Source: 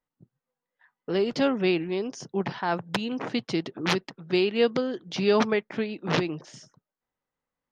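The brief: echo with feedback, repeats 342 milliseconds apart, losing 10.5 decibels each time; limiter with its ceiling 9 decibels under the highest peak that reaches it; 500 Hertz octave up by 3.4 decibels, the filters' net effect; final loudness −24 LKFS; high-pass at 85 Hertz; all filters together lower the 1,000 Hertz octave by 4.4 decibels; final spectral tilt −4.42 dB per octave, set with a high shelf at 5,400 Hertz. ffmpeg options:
ffmpeg -i in.wav -af "highpass=85,equalizer=frequency=500:width_type=o:gain=6,equalizer=frequency=1000:width_type=o:gain=-8.5,highshelf=frequency=5400:gain=6.5,alimiter=limit=-16.5dB:level=0:latency=1,aecho=1:1:342|684|1026:0.299|0.0896|0.0269,volume=3.5dB" out.wav

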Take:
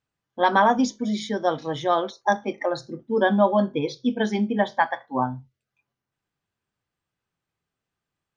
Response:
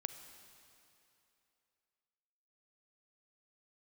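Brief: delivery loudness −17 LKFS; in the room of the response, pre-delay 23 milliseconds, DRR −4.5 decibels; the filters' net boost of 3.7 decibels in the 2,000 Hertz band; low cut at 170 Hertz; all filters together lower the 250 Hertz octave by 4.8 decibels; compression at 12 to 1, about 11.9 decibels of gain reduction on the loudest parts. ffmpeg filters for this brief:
-filter_complex "[0:a]highpass=170,equalizer=frequency=250:width_type=o:gain=-4.5,equalizer=frequency=2000:width_type=o:gain=5,acompressor=threshold=-25dB:ratio=12,asplit=2[link_01][link_02];[1:a]atrim=start_sample=2205,adelay=23[link_03];[link_02][link_03]afir=irnorm=-1:irlink=0,volume=6dB[link_04];[link_01][link_04]amix=inputs=2:normalize=0,volume=9dB"

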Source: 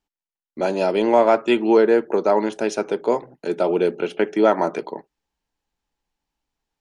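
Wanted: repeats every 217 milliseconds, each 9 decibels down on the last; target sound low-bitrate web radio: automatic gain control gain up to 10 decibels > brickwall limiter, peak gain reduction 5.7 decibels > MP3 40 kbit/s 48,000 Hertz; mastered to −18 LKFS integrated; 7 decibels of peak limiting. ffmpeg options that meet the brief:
ffmpeg -i in.wav -af "alimiter=limit=-10.5dB:level=0:latency=1,aecho=1:1:217|434|651|868:0.355|0.124|0.0435|0.0152,dynaudnorm=maxgain=10dB,alimiter=limit=-14dB:level=0:latency=1,volume=7dB" -ar 48000 -c:a libmp3lame -b:a 40k out.mp3

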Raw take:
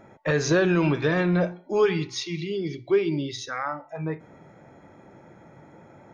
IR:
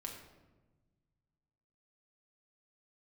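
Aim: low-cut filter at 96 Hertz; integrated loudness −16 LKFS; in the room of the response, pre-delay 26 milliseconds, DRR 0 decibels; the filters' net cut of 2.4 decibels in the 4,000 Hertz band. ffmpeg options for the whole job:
-filter_complex "[0:a]highpass=96,equalizer=frequency=4000:width_type=o:gain=-3,asplit=2[link_01][link_02];[1:a]atrim=start_sample=2205,adelay=26[link_03];[link_02][link_03]afir=irnorm=-1:irlink=0,volume=2dB[link_04];[link_01][link_04]amix=inputs=2:normalize=0,volume=6dB"

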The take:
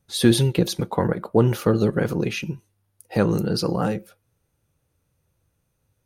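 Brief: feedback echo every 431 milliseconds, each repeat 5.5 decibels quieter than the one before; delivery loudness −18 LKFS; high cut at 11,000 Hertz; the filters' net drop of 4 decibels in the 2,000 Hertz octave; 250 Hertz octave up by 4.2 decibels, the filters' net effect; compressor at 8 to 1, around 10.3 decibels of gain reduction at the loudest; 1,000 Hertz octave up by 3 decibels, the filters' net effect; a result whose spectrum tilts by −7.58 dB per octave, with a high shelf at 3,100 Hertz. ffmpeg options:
ffmpeg -i in.wav -af "lowpass=11000,equalizer=frequency=250:width_type=o:gain=5.5,equalizer=frequency=1000:width_type=o:gain=5.5,equalizer=frequency=2000:width_type=o:gain=-5.5,highshelf=frequency=3100:gain=-7,acompressor=threshold=-17dB:ratio=8,aecho=1:1:431|862|1293|1724|2155|2586|3017:0.531|0.281|0.149|0.079|0.0419|0.0222|0.0118,volume=6dB" out.wav

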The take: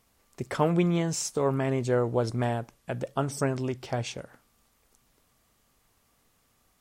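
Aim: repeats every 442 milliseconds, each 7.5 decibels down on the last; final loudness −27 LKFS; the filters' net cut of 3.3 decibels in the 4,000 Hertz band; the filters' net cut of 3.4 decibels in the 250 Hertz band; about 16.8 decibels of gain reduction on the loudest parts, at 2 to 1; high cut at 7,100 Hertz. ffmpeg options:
ffmpeg -i in.wav -af "lowpass=7100,equalizer=frequency=250:width_type=o:gain=-5.5,equalizer=frequency=4000:width_type=o:gain=-4,acompressor=threshold=-54dB:ratio=2,aecho=1:1:442|884|1326|1768|2210:0.422|0.177|0.0744|0.0312|0.0131,volume=18dB" out.wav

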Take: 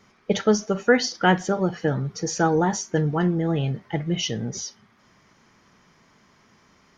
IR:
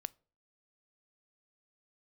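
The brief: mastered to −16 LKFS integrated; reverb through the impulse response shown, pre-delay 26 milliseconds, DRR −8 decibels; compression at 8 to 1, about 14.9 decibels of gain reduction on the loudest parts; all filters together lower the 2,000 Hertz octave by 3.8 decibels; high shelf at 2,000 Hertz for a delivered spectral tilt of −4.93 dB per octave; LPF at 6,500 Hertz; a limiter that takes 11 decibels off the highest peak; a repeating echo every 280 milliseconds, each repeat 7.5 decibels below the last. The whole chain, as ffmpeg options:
-filter_complex "[0:a]lowpass=6500,highshelf=frequency=2000:gain=-4,equalizer=frequency=2000:width_type=o:gain=-3,acompressor=threshold=-29dB:ratio=8,alimiter=level_in=4.5dB:limit=-24dB:level=0:latency=1,volume=-4.5dB,aecho=1:1:280|560|840|1120|1400:0.422|0.177|0.0744|0.0312|0.0131,asplit=2[link_01][link_02];[1:a]atrim=start_sample=2205,adelay=26[link_03];[link_02][link_03]afir=irnorm=-1:irlink=0,volume=10.5dB[link_04];[link_01][link_04]amix=inputs=2:normalize=0,volume=13dB"

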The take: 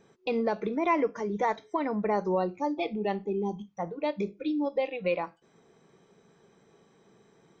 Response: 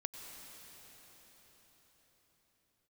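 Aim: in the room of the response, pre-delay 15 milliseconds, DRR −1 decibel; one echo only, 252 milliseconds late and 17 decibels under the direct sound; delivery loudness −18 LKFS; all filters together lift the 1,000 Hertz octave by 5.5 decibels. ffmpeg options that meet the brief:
-filter_complex "[0:a]equalizer=frequency=1000:width_type=o:gain=6.5,aecho=1:1:252:0.141,asplit=2[link_01][link_02];[1:a]atrim=start_sample=2205,adelay=15[link_03];[link_02][link_03]afir=irnorm=-1:irlink=0,volume=2.5dB[link_04];[link_01][link_04]amix=inputs=2:normalize=0,volume=6dB"

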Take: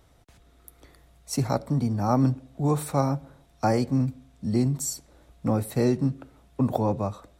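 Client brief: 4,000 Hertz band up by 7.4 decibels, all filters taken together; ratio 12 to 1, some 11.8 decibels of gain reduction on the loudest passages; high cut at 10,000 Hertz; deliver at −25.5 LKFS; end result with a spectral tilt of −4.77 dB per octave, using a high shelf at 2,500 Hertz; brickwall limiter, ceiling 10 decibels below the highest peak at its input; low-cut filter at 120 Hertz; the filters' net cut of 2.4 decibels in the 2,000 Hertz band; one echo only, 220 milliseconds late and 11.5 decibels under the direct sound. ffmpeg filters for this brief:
ffmpeg -i in.wav -af "highpass=120,lowpass=10000,equalizer=frequency=2000:width_type=o:gain=-7.5,highshelf=frequency=2500:gain=7.5,equalizer=frequency=4000:width_type=o:gain=3.5,acompressor=threshold=-30dB:ratio=12,alimiter=level_in=5dB:limit=-24dB:level=0:latency=1,volume=-5dB,aecho=1:1:220:0.266,volume=13.5dB" out.wav

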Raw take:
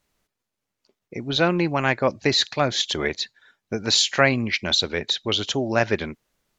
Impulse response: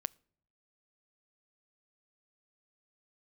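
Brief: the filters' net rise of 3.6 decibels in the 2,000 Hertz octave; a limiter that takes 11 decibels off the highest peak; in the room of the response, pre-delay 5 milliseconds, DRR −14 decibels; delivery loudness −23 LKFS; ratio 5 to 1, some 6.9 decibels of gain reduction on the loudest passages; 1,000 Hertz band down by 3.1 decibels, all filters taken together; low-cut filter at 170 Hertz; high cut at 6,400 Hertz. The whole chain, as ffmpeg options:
-filter_complex "[0:a]highpass=170,lowpass=6400,equalizer=frequency=1000:width_type=o:gain=-7,equalizer=frequency=2000:width_type=o:gain=6.5,acompressor=threshold=-21dB:ratio=5,alimiter=limit=-18dB:level=0:latency=1,asplit=2[link_01][link_02];[1:a]atrim=start_sample=2205,adelay=5[link_03];[link_02][link_03]afir=irnorm=-1:irlink=0,volume=15dB[link_04];[link_01][link_04]amix=inputs=2:normalize=0,volume=-8dB"

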